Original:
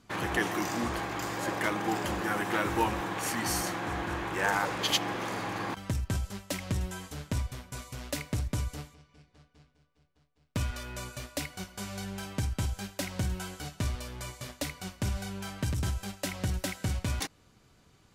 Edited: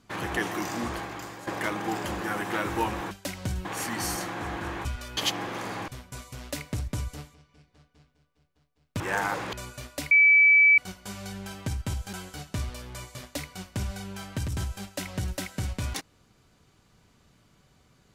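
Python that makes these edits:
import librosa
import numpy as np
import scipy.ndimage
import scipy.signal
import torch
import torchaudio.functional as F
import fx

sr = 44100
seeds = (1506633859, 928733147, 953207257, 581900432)

y = fx.edit(x, sr, fx.fade_out_to(start_s=0.92, length_s=0.55, floor_db=-11.0),
    fx.swap(start_s=4.31, length_s=0.53, other_s=10.6, other_length_s=0.32),
    fx.cut(start_s=5.55, length_s=1.93),
    fx.insert_tone(at_s=11.5, length_s=0.67, hz=2300.0, db=-14.0),
    fx.move(start_s=12.85, length_s=0.54, to_s=3.11), tone=tone)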